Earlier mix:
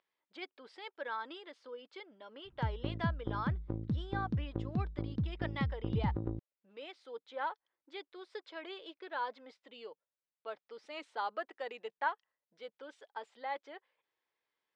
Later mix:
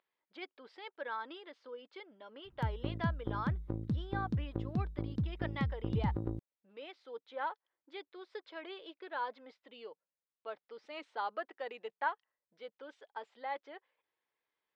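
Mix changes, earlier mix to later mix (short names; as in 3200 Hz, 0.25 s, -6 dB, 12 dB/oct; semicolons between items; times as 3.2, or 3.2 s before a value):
speech: add air absorption 200 m; master: remove air absorption 110 m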